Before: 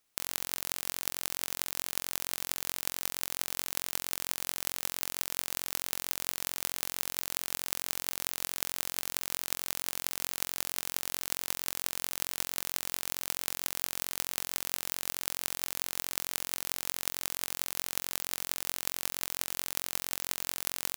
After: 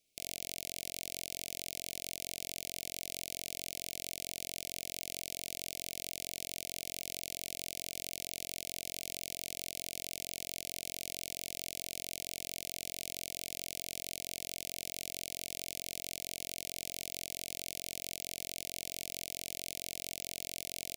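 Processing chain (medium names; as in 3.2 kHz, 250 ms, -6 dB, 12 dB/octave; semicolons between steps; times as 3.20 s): Chebyshev band-stop 680–2200 Hz, order 4; treble shelf 11 kHz -6.5 dB; peak limiter -16.5 dBFS, peak gain reduction 8 dB; trim +1 dB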